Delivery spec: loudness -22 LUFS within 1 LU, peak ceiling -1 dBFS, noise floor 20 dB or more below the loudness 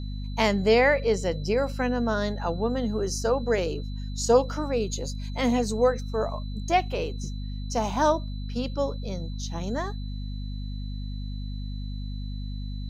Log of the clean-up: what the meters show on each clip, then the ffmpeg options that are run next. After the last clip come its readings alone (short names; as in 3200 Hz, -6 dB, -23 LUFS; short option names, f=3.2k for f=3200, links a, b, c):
hum 50 Hz; harmonics up to 250 Hz; hum level -30 dBFS; steady tone 4000 Hz; tone level -49 dBFS; loudness -27.5 LUFS; peak -8.0 dBFS; loudness target -22.0 LUFS
-> -af "bandreject=f=50:t=h:w=4,bandreject=f=100:t=h:w=4,bandreject=f=150:t=h:w=4,bandreject=f=200:t=h:w=4,bandreject=f=250:t=h:w=4"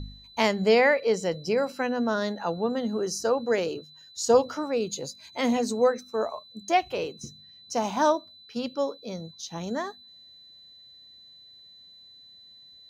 hum none; steady tone 4000 Hz; tone level -49 dBFS
-> -af "bandreject=f=4k:w=30"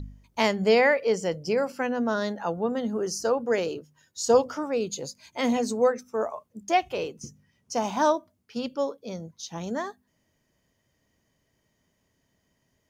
steady tone none; loudness -26.5 LUFS; peak -8.5 dBFS; loudness target -22.0 LUFS
-> -af "volume=4.5dB"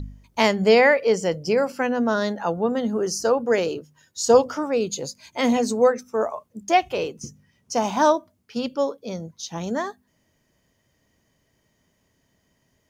loudness -22.5 LUFS; peak -4.0 dBFS; noise floor -69 dBFS